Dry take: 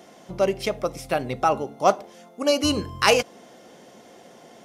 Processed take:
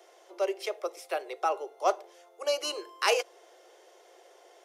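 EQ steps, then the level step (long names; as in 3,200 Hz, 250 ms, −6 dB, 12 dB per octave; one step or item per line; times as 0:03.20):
Butterworth high-pass 340 Hz 96 dB per octave
−7.5 dB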